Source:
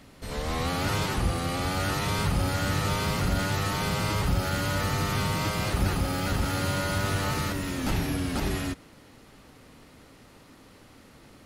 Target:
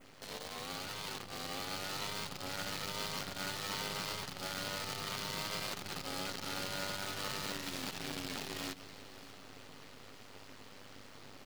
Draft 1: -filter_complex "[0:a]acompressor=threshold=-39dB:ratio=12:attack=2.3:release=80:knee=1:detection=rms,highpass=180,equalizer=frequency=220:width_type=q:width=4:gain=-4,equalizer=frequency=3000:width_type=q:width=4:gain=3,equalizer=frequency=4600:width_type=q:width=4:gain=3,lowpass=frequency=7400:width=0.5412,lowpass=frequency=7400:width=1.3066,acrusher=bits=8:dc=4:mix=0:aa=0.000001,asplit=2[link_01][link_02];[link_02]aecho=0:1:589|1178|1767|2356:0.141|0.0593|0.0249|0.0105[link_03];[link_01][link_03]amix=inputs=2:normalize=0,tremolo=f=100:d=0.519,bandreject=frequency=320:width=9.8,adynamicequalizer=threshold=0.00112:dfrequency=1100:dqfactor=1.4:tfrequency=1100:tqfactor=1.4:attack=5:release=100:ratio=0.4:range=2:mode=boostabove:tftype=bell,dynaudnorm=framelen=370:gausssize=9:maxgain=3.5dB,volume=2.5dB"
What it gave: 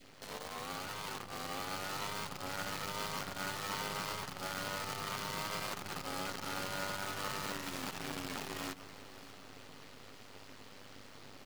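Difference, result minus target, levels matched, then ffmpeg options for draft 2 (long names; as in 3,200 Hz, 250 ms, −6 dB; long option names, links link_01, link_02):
1,000 Hz band +3.0 dB
-filter_complex "[0:a]acompressor=threshold=-39dB:ratio=12:attack=2.3:release=80:knee=1:detection=rms,highpass=180,equalizer=frequency=220:width_type=q:width=4:gain=-4,equalizer=frequency=3000:width_type=q:width=4:gain=3,equalizer=frequency=4600:width_type=q:width=4:gain=3,lowpass=frequency=7400:width=0.5412,lowpass=frequency=7400:width=1.3066,acrusher=bits=8:dc=4:mix=0:aa=0.000001,asplit=2[link_01][link_02];[link_02]aecho=0:1:589|1178|1767|2356:0.141|0.0593|0.0249|0.0105[link_03];[link_01][link_03]amix=inputs=2:normalize=0,tremolo=f=100:d=0.519,bandreject=frequency=320:width=9.8,adynamicequalizer=threshold=0.00112:dfrequency=4100:dqfactor=1.4:tfrequency=4100:tqfactor=1.4:attack=5:release=100:ratio=0.4:range=2:mode=boostabove:tftype=bell,dynaudnorm=framelen=370:gausssize=9:maxgain=3.5dB,volume=2.5dB"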